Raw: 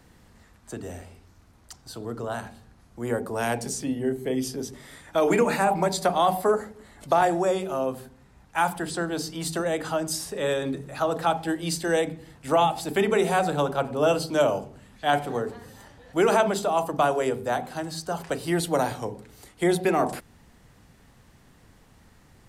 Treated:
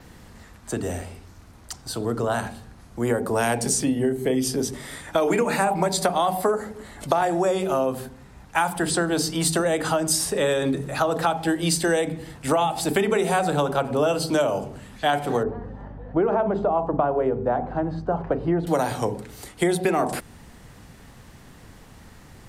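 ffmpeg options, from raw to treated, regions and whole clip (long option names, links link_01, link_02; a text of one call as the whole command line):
ffmpeg -i in.wav -filter_complex "[0:a]asettb=1/sr,asplit=3[link_01][link_02][link_03];[link_01]atrim=end=15.434[link_04];[link_02]atrim=start=15.43:end=18.67,asetpts=PTS-STARTPTS,afade=type=in:duration=0.004:curve=qsin,afade=type=out:start_time=3.236:duration=0.004:curve=qsin,lowpass=1000,aeval=exprs='val(0)+0.00501*(sin(2*PI*50*n/s)+sin(2*PI*2*50*n/s)/2+sin(2*PI*3*50*n/s)/3+sin(2*PI*4*50*n/s)/4+sin(2*PI*5*50*n/s)/5)':channel_layout=same[link_05];[link_03]atrim=start=18.666[link_06];[link_04][link_05]acrossfade=duration=0.004:curve1=hsin:curve2=qsin[link_07];[link_07][link_06]acrossfade=duration=0.004:curve1=qsin:curve2=hsin,acompressor=threshold=-27dB:ratio=6,adynamicequalizer=threshold=0.00178:dfrequency=8800:dqfactor=5.1:tfrequency=8800:tqfactor=5.1:attack=5:release=100:ratio=0.375:range=2.5:mode=boostabove:tftype=bell,volume=8.5dB" out.wav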